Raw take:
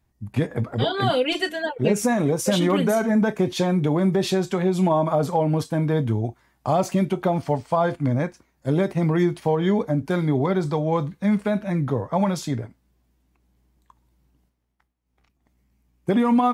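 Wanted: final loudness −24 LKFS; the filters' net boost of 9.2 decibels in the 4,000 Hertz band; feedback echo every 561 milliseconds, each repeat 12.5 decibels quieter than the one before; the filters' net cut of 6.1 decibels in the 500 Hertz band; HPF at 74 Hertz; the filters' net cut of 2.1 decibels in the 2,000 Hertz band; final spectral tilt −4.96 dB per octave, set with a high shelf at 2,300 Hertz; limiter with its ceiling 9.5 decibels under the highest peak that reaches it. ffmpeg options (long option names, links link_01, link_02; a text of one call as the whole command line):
ffmpeg -i in.wav -af "highpass=74,equalizer=frequency=500:width_type=o:gain=-8.5,equalizer=frequency=2000:width_type=o:gain=-8,highshelf=frequency=2300:gain=7.5,equalizer=frequency=4000:width_type=o:gain=8,alimiter=limit=-15dB:level=0:latency=1,aecho=1:1:561|1122|1683:0.237|0.0569|0.0137,volume=1dB" out.wav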